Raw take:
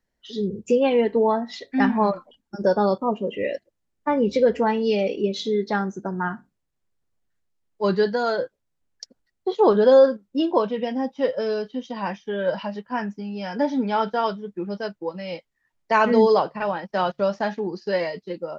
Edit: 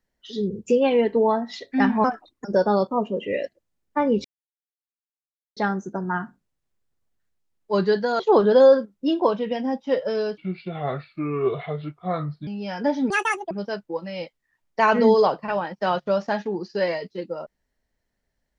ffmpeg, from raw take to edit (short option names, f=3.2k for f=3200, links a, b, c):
-filter_complex "[0:a]asplit=10[a][b][c][d][e][f][g][h][i][j];[a]atrim=end=2.044[k];[b]atrim=start=2.04:end=2.55,asetpts=PTS-STARTPTS,asetrate=55566,aresample=44100[l];[c]atrim=start=2.546:end=4.35,asetpts=PTS-STARTPTS,afade=t=out:st=1.8:d=0.004:c=hsin[m];[d]atrim=start=4.35:end=5.67,asetpts=PTS-STARTPTS,volume=0[n];[e]atrim=start=5.67:end=8.302,asetpts=PTS-STARTPTS,afade=t=in:d=0.004:c=hsin[o];[f]atrim=start=9.508:end=11.694[p];[g]atrim=start=11.69:end=13.22,asetpts=PTS-STARTPTS,asetrate=32193,aresample=44100[q];[h]atrim=start=13.216:end=13.854[r];[i]atrim=start=13.85:end=14.63,asetpts=PTS-STARTPTS,asetrate=84231,aresample=44100,atrim=end_sample=18009,asetpts=PTS-STARTPTS[s];[j]atrim=start=14.626[t];[k][l]acrossfade=d=0.004:c1=hsin:c2=hsin[u];[m][n][o]concat=n=3:v=0:a=1[v];[u][v]acrossfade=d=0.004:c1=hsin:c2=hsin[w];[w][p]acrossfade=d=0.004:c1=hsin:c2=hsin[x];[x][q]acrossfade=d=0.004:c1=hsin:c2=hsin[y];[y][r]acrossfade=d=0.004:c1=hsin:c2=hsin[z];[z][s]acrossfade=d=0.004:c1=hsin:c2=hsin[aa];[aa][t]acrossfade=d=0.004:c1=hsin:c2=hsin"